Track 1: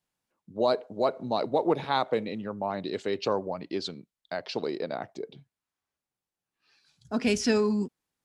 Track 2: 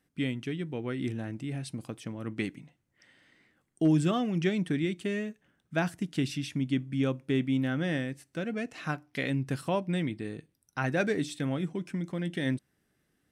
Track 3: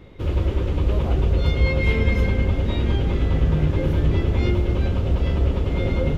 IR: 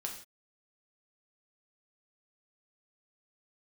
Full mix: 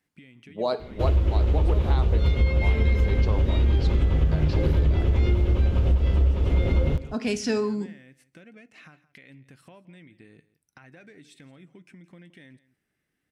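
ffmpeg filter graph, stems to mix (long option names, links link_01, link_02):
-filter_complex "[0:a]volume=-4.5dB,asplit=2[link_01][link_02];[link_02]volume=-6dB[link_03];[1:a]equalizer=frequency=2200:width_type=o:width=0.77:gain=7.5,alimiter=level_in=2.5dB:limit=-24dB:level=0:latency=1:release=232,volume=-2.5dB,acompressor=threshold=-40dB:ratio=6,volume=-6.5dB,asplit=2[link_04][link_05];[link_05]volume=-18.5dB[link_06];[2:a]equalizer=frequency=65:width=4.9:gain=10.5,adelay=800,volume=1dB,asplit=2[link_07][link_08];[link_08]volume=-19.5dB[link_09];[3:a]atrim=start_sample=2205[link_10];[link_03][link_10]afir=irnorm=-1:irlink=0[link_11];[link_06][link_09]amix=inputs=2:normalize=0,aecho=0:1:170:1[link_12];[link_01][link_04][link_07][link_11][link_12]amix=inputs=5:normalize=0,acompressor=threshold=-17dB:ratio=6"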